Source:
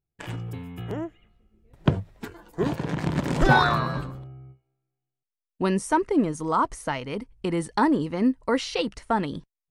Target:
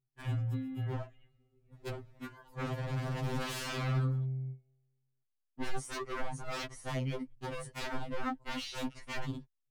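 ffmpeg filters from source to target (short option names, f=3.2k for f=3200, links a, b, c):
-af "aeval=exprs='0.0473*(abs(mod(val(0)/0.0473+3,4)-2)-1)':c=same,bass=f=250:g=6,treble=f=4k:g=-4,afftfilt=real='re*2.45*eq(mod(b,6),0)':imag='im*2.45*eq(mod(b,6),0)':win_size=2048:overlap=0.75,volume=-4.5dB"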